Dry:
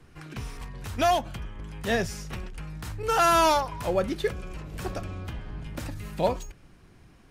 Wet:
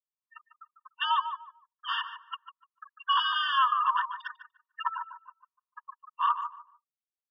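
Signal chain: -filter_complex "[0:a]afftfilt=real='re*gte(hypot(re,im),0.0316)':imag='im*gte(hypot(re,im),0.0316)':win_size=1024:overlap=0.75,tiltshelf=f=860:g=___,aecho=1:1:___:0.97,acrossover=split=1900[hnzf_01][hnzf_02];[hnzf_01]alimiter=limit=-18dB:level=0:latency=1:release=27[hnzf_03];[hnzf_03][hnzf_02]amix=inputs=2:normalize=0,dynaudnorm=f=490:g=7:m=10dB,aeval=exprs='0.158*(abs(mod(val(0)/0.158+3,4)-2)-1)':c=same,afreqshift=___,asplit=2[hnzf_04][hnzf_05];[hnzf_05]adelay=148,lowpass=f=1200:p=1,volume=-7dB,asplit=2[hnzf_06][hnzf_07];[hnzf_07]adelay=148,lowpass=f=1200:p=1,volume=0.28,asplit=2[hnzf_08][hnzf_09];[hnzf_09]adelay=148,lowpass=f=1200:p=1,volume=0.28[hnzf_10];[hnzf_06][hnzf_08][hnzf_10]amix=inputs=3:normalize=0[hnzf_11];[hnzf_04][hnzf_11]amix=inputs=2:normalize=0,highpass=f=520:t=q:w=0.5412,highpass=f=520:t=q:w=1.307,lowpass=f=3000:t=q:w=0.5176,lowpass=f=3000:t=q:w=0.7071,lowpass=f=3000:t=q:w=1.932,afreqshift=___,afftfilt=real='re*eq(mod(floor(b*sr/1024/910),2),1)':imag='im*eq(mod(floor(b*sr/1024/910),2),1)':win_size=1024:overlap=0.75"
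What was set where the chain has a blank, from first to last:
-8.5, 1.1, 140, 80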